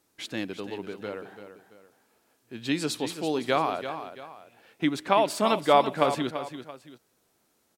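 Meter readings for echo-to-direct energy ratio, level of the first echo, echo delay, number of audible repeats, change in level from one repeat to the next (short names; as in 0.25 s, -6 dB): -10.0 dB, -10.5 dB, 0.337 s, 2, -8.5 dB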